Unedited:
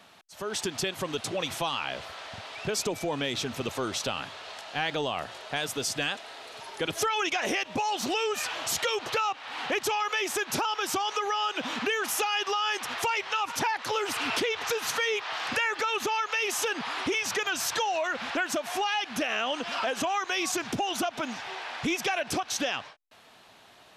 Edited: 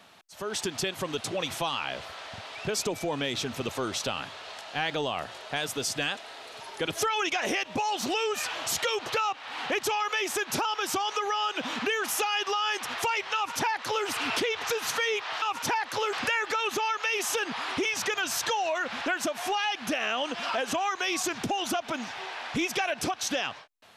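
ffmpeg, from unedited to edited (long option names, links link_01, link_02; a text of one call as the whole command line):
ffmpeg -i in.wav -filter_complex "[0:a]asplit=3[link_01][link_02][link_03];[link_01]atrim=end=15.422[link_04];[link_02]atrim=start=13.348:end=14.062[link_05];[link_03]atrim=start=15.418[link_06];[link_04][link_05]acrossfade=duration=0.004:curve1=hsin:curve2=hsin[link_07];[link_07][link_06]acrossfade=duration=0.004:curve1=hsin:curve2=hsin" out.wav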